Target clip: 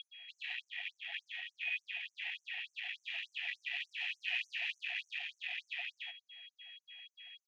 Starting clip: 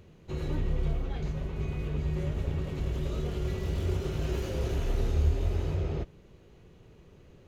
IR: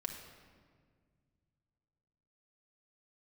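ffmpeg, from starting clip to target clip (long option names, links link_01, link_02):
-filter_complex "[0:a]aeval=exprs='val(0)+0.00447*sin(2*PI*3300*n/s)':channel_layout=same,acrossover=split=330|1200[link_01][link_02][link_03];[link_01]alimiter=level_in=3dB:limit=-24dB:level=0:latency=1:release=142,volume=-3dB[link_04];[link_04][link_02][link_03]amix=inputs=3:normalize=0,asoftclip=type=tanh:threshold=-32.5dB,asplit=2[link_05][link_06];[link_06]aecho=0:1:68|79:0.473|0.501[link_07];[link_05][link_07]amix=inputs=2:normalize=0,adynamicsmooth=sensitivity=8:basefreq=2300,asplit=3[link_08][link_09][link_10];[link_08]bandpass=frequency=530:width_type=q:width=8,volume=0dB[link_11];[link_09]bandpass=frequency=1840:width_type=q:width=8,volume=-6dB[link_12];[link_10]bandpass=frequency=2480:width_type=q:width=8,volume=-9dB[link_13];[link_11][link_12][link_13]amix=inputs=3:normalize=0,highshelf=frequency=1800:width_type=q:width=3:gain=8,afftfilt=real='re*gte(b*sr/1024,660*pow(5900/660,0.5+0.5*sin(2*PI*3.4*pts/sr)))':imag='im*gte(b*sr/1024,660*pow(5900/660,0.5+0.5*sin(2*PI*3.4*pts/sr)))':win_size=1024:overlap=0.75,volume=18dB"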